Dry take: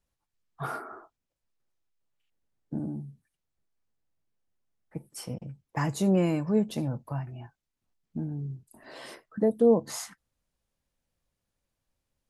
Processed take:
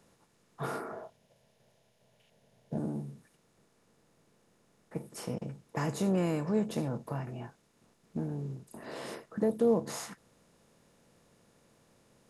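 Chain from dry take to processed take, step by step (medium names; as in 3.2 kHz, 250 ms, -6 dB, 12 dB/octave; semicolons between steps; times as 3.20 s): spectral levelling over time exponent 0.6; 0.92–2.78 s: graphic EQ with 31 bands 125 Hz +6 dB, 315 Hz -12 dB, 630 Hz +8 dB, 1.25 kHz -11 dB, 3.15 kHz +4 dB, 8 kHz -6 dB; trim -6.5 dB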